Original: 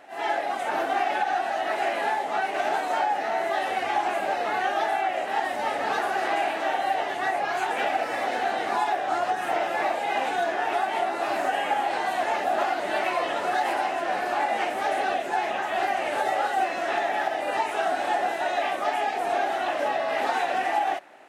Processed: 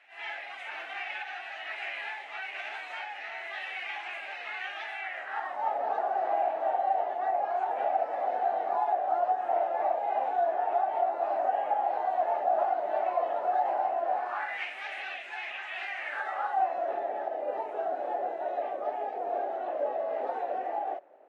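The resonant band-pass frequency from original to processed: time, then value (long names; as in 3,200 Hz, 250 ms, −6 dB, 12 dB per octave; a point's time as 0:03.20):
resonant band-pass, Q 2.8
0:04.97 2,400 Hz
0:05.81 690 Hz
0:14.12 690 Hz
0:14.63 2,400 Hz
0:15.88 2,400 Hz
0:16.96 520 Hz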